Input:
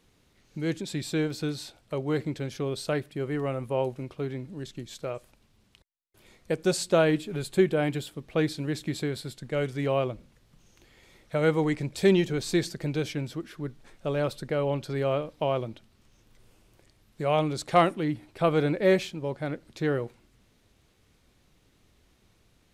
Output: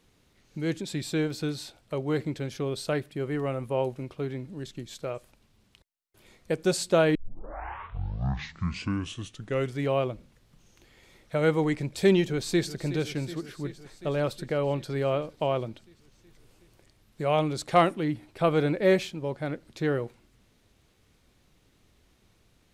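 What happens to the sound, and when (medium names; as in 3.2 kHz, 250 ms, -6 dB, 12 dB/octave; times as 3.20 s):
7.15 s: tape start 2.63 s
12.21–12.81 s: echo throw 370 ms, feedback 75%, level -14 dB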